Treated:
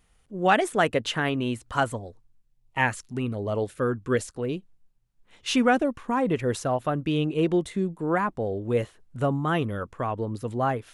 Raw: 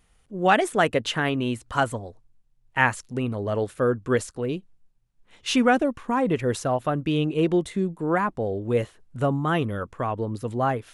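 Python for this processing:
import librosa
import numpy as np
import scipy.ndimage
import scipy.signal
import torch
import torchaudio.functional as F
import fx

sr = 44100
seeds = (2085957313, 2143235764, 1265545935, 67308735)

y = fx.filter_lfo_notch(x, sr, shape='sine', hz=1.2, low_hz=510.0, high_hz=1700.0, q=2.4, at=(1.95, 4.26), fade=0.02)
y = F.gain(torch.from_numpy(y), -1.5).numpy()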